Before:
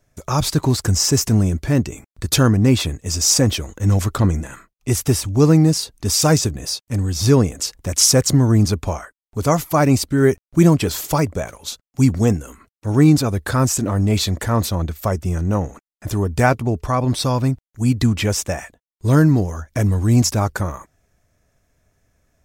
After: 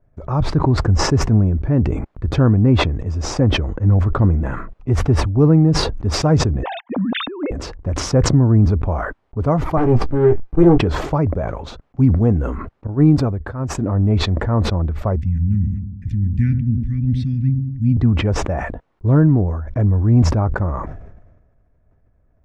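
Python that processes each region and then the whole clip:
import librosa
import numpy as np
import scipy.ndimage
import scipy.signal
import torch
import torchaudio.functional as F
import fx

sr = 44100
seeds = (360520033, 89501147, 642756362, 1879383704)

y = fx.chain(x, sr, fx.sine_speech(),
    fx.dynamic_eq(hz=240.0, q=0.8, threshold_db=-22.0, ratio=4.0, max_db=-5),
    fx.over_compress(threshold_db=-22.0, ratio=-0.5), at=(6.63, 7.51))
y = fx.chain(y, sr, fx.lower_of_two(delay_ms=2.5),
    fx.doubler(ms=17.0, db=-7), at=(9.77, 10.78))
y = fx.chain(y, sr, fx.high_shelf(hz=11000.0, db=10.5),
    fx.upward_expand(threshold_db=-28.0, expansion=2.5), at=(12.87, 13.75))
y = fx.chain(y, sr, fx.cheby1_bandstop(low_hz=250.0, high_hz=1900.0, order=4),
    fx.echo_wet_lowpass(ms=97, feedback_pct=53, hz=750.0, wet_db=-10.5), at=(15.16, 17.97))
y = scipy.signal.sosfilt(scipy.signal.butter(2, 1100.0, 'lowpass', fs=sr, output='sos'), y)
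y = fx.low_shelf(y, sr, hz=78.0, db=8.5)
y = fx.sustainer(y, sr, db_per_s=46.0)
y = y * librosa.db_to_amplitude(-1.0)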